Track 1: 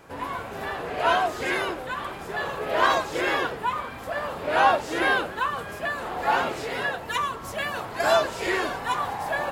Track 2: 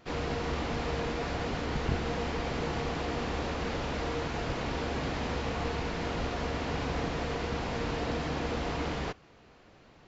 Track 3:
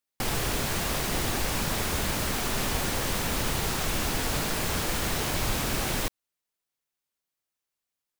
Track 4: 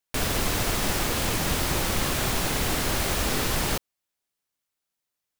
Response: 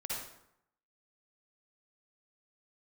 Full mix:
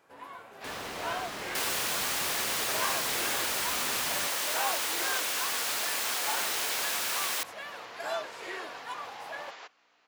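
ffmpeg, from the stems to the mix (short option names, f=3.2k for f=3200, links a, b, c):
-filter_complex "[0:a]volume=-12.5dB[a];[1:a]alimiter=level_in=2dB:limit=-24dB:level=0:latency=1:release=60,volume=-2dB,aeval=exprs='val(0)+0.00562*(sin(2*PI*60*n/s)+sin(2*PI*2*60*n/s)/2+sin(2*PI*3*60*n/s)/3+sin(2*PI*4*60*n/s)/4+sin(2*PI*5*60*n/s)/5)':c=same,highpass=790,adelay=550,volume=-4.5dB[b];[2:a]highpass=f=1.3k:p=1,adelay=1350,volume=1dB[c];[3:a]highshelf=f=6.4k:g=-11,adelay=500,volume=-9.5dB[d];[a][b][c][d]amix=inputs=4:normalize=0,highpass=f=420:p=1"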